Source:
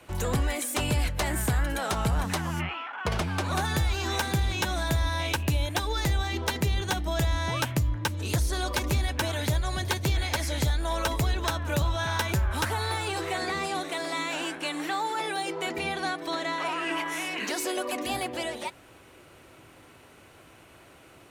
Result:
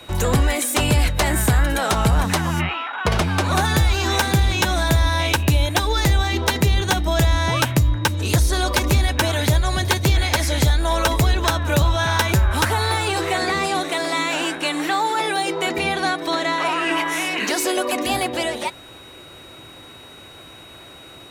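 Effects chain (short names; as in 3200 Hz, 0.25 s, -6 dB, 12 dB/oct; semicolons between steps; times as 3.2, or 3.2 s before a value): whine 3800 Hz -52 dBFS; gain +9 dB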